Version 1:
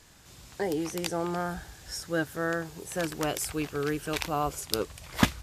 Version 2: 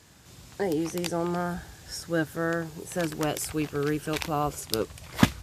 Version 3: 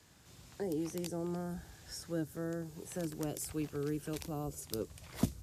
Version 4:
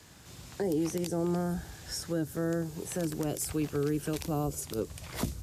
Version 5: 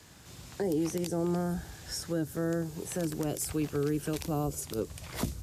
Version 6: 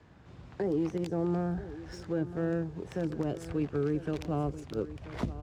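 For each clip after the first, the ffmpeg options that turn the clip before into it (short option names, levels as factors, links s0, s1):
-af "highpass=72,lowshelf=f=380:g=5"
-filter_complex "[0:a]acrossover=split=180|530|5200[s0][s1][s2][s3];[s2]acompressor=threshold=0.00708:ratio=6[s4];[s0][s1][s4][s3]amix=inputs=4:normalize=0,asoftclip=type=tanh:threshold=0.282,volume=0.422"
-af "alimiter=level_in=2.11:limit=0.0631:level=0:latency=1:release=60,volume=0.473,volume=2.66"
-af anull
-af "adynamicsmooth=sensitivity=4:basefreq=1800,aecho=1:1:982:0.188"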